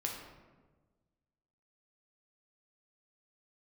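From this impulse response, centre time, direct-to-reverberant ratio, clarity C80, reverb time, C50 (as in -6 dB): 48 ms, -0.5 dB, 6.0 dB, 1.3 s, 3.5 dB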